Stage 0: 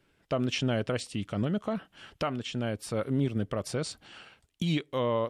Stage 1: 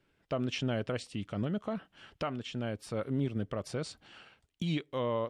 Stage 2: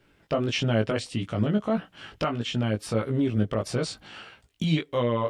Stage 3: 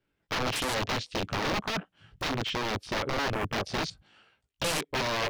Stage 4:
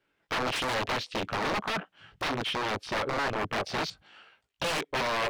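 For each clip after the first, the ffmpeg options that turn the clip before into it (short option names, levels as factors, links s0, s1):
-af "highshelf=f=8700:g=-10,volume=0.631"
-filter_complex "[0:a]asplit=2[s0][s1];[s1]alimiter=level_in=1.88:limit=0.0631:level=0:latency=1:release=185,volume=0.531,volume=1.12[s2];[s0][s2]amix=inputs=2:normalize=0,flanger=delay=17:depth=2.2:speed=1.6,volume=2.24"
-af "aeval=exprs='(mod(15*val(0)+1,2)-1)/15':c=same,afwtdn=0.0112"
-filter_complex "[0:a]asplit=2[s0][s1];[s1]highpass=f=720:p=1,volume=5.62,asoftclip=type=tanh:threshold=0.0944[s2];[s0][s2]amix=inputs=2:normalize=0,lowpass=f=3200:p=1,volume=0.501,volume=0.841"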